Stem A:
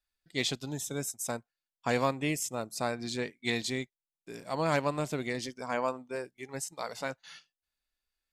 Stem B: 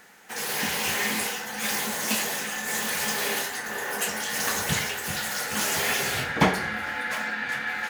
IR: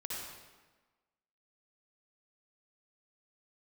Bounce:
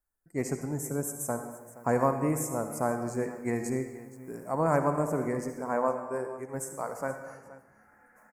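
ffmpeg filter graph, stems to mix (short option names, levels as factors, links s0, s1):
-filter_complex "[0:a]volume=1.12,asplit=4[s0][s1][s2][s3];[s1]volume=0.631[s4];[s2]volume=0.168[s5];[1:a]acompressor=threshold=0.0178:ratio=3,adelay=1050,volume=0.1,asplit=3[s6][s7][s8];[s6]atrim=end=5.94,asetpts=PTS-STARTPTS,afade=t=out:st=5.936:d=0.004:c=hsin[s9];[s7]atrim=start=5.94:end=6.53,asetpts=PTS-STARTPTS,volume=0[s10];[s8]atrim=start=6.53,asetpts=PTS-STARTPTS,afade=t=in:d=0.004:c=hsin[s11];[s9][s10][s11]concat=n=3:v=0:a=1,asplit=2[s12][s13];[s13]volume=0.224[s14];[s3]apad=whole_len=394454[s15];[s12][s15]sidechaincompress=threshold=0.0112:ratio=8:attack=7.8:release=993[s16];[2:a]atrim=start_sample=2205[s17];[s4][s14]amix=inputs=2:normalize=0[s18];[s18][s17]afir=irnorm=-1:irlink=0[s19];[s5]aecho=0:1:472:1[s20];[s0][s16][s19][s20]amix=inputs=4:normalize=0,asuperstop=centerf=3500:order=4:qfactor=0.5"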